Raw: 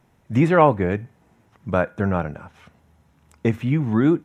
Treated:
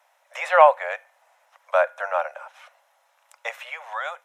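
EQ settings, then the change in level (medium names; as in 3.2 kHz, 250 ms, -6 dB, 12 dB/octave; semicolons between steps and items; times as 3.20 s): steep high-pass 540 Hz 96 dB/octave; +3.0 dB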